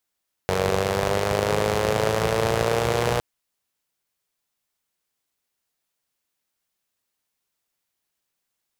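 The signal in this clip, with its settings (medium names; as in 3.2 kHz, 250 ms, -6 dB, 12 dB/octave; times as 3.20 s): four-cylinder engine model, changing speed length 2.71 s, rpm 2800, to 3600, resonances 81/140/450 Hz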